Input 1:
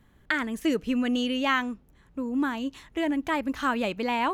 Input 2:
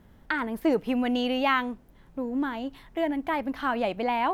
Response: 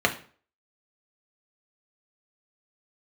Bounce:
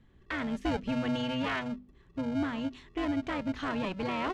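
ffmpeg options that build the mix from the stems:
-filter_complex "[0:a]equalizer=f=1100:w=0.47:g=-8,bandreject=f=50:t=h:w=6,bandreject=f=100:t=h:w=6,bandreject=f=150:t=h:w=6,bandreject=f=200:t=h:w=6,bandreject=f=250:t=h:w=6,alimiter=level_in=1.19:limit=0.0631:level=0:latency=1,volume=0.841,volume=1.06[s0];[1:a]afwtdn=0.02,aeval=exprs='val(0)*sgn(sin(2*PI*380*n/s))':c=same,adelay=2,volume=0.266[s1];[s0][s1]amix=inputs=2:normalize=0,lowpass=3900"

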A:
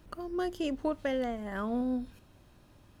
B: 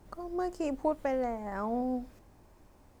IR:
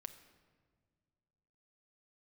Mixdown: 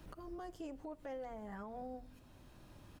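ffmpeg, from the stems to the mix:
-filter_complex "[0:a]acrossover=split=150[s0][s1];[s1]acompressor=threshold=0.00447:ratio=4[s2];[s0][s2]amix=inputs=2:normalize=0,volume=1,asplit=2[s3][s4];[s4]volume=0.447[s5];[1:a]acontrast=71,adelay=9.5,volume=0.133,asplit=2[s6][s7];[s7]apad=whole_len=132300[s8];[s3][s8]sidechaincompress=threshold=0.00355:ratio=3:attack=28:release=1460[s9];[2:a]atrim=start_sample=2205[s10];[s5][s10]afir=irnorm=-1:irlink=0[s11];[s9][s6][s11]amix=inputs=3:normalize=0,alimiter=level_in=5.01:limit=0.0631:level=0:latency=1:release=111,volume=0.2"

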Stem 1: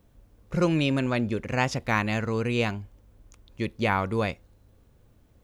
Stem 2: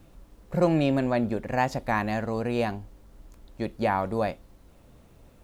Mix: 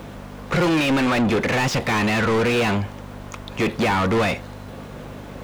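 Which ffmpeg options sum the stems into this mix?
-filter_complex "[0:a]volume=1.26[s0];[1:a]aeval=exprs='val(0)+0.0112*(sin(2*PI*50*n/s)+sin(2*PI*2*50*n/s)/2+sin(2*PI*3*50*n/s)/3+sin(2*PI*4*50*n/s)/4+sin(2*PI*5*50*n/s)/5)':c=same,volume=-1,volume=0.266[s1];[s0][s1]amix=inputs=2:normalize=0,acrossover=split=400|3000[s2][s3][s4];[s3]acompressor=threshold=0.0224:ratio=2.5[s5];[s2][s5][s4]amix=inputs=3:normalize=0,asplit=2[s6][s7];[s7]highpass=f=720:p=1,volume=70.8,asoftclip=type=tanh:threshold=0.266[s8];[s6][s8]amix=inputs=2:normalize=0,lowpass=f=2000:p=1,volume=0.501"

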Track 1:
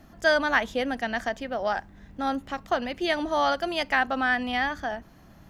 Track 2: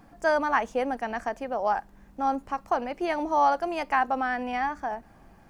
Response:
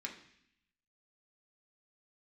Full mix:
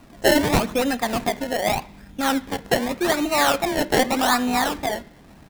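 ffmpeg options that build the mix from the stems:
-filter_complex "[0:a]acrusher=samples=25:mix=1:aa=0.000001:lfo=1:lforange=25:lforate=0.84,volume=1.41,asplit=2[s0][s1];[s1]volume=0.501[s2];[1:a]aeval=exprs='0.0562*(abs(mod(val(0)/0.0562+3,4)-2)-1)':c=same,adelay=1.2,volume=0.708[s3];[2:a]atrim=start_sample=2205[s4];[s2][s4]afir=irnorm=-1:irlink=0[s5];[s0][s3][s5]amix=inputs=3:normalize=0"

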